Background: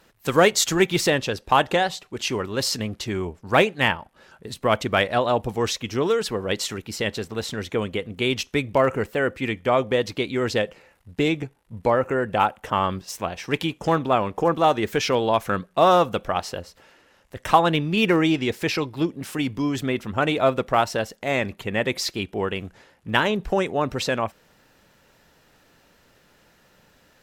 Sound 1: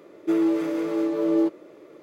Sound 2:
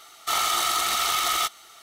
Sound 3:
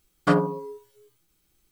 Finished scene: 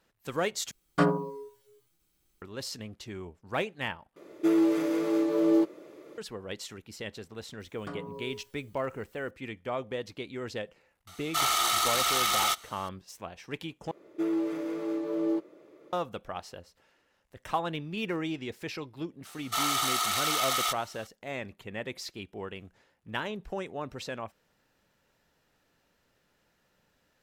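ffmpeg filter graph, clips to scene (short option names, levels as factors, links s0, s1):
-filter_complex "[3:a]asplit=2[s0][s1];[1:a]asplit=2[s2][s3];[2:a]asplit=2[s4][s5];[0:a]volume=0.211[s6];[s2]highshelf=f=4000:g=6.5[s7];[s1]acompressor=threshold=0.0141:ratio=6:attack=3.2:release=140:knee=1:detection=peak[s8];[s5]highpass=390[s9];[s6]asplit=4[s10][s11][s12][s13];[s10]atrim=end=0.714[s14];[s0]atrim=end=1.71,asetpts=PTS-STARTPTS,volume=0.631[s15];[s11]atrim=start=2.416:end=4.164[s16];[s7]atrim=end=2.02,asetpts=PTS-STARTPTS,volume=0.794[s17];[s12]atrim=start=6.176:end=13.914[s18];[s3]atrim=end=2.02,asetpts=PTS-STARTPTS,volume=0.422[s19];[s13]atrim=start=15.926[s20];[s8]atrim=end=1.71,asetpts=PTS-STARTPTS,volume=0.891,afade=t=in:d=0.004:c=hsin,afade=t=out:st=1.706:d=0.004:c=hsin,adelay=7600[s21];[s4]atrim=end=1.82,asetpts=PTS-STARTPTS,volume=0.75,afade=t=in:d=0.004:c=hsin,afade=t=out:st=1.816:d=0.004:c=hsin,adelay=11070[s22];[s9]atrim=end=1.82,asetpts=PTS-STARTPTS,volume=0.596,afade=t=in:d=0.004:c=hsin,afade=t=out:st=1.816:d=0.004:c=hsin,adelay=19250[s23];[s14][s15]acrossfade=d=0.004:c1=hsin:c2=hsin[s24];[s24][s16]acrossfade=d=0.004:c1=hsin:c2=hsin[s25];[s25][s17]acrossfade=d=0.004:c1=hsin:c2=hsin[s26];[s26][s18]acrossfade=d=0.004:c1=hsin:c2=hsin[s27];[s27][s19]acrossfade=d=0.004:c1=hsin:c2=hsin[s28];[s28][s20]acrossfade=d=0.004:c1=hsin:c2=hsin[s29];[s29][s21][s22][s23]amix=inputs=4:normalize=0"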